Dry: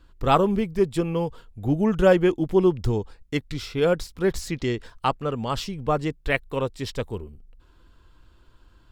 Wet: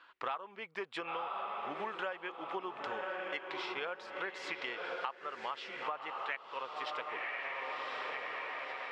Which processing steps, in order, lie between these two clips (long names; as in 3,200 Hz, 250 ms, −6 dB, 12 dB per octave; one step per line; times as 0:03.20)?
flat-topped band-pass 1,600 Hz, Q 0.75
feedback delay with all-pass diffusion 1,047 ms, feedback 41%, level −7.5 dB
downward compressor 12 to 1, threshold −44 dBFS, peak gain reduction 28 dB
level +8 dB